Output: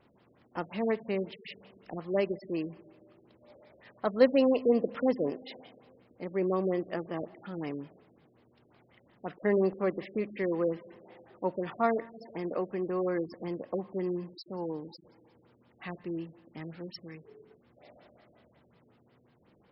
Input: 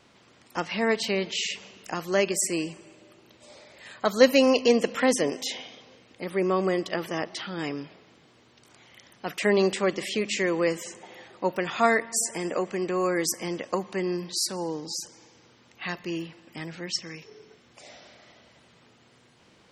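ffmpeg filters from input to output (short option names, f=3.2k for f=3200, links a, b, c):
-af "tiltshelf=f=1.5k:g=5,afftfilt=real='re*lt(b*sr/1024,630*pow(5600/630,0.5+0.5*sin(2*PI*5.5*pts/sr)))':imag='im*lt(b*sr/1024,630*pow(5600/630,0.5+0.5*sin(2*PI*5.5*pts/sr)))':win_size=1024:overlap=0.75,volume=-8.5dB"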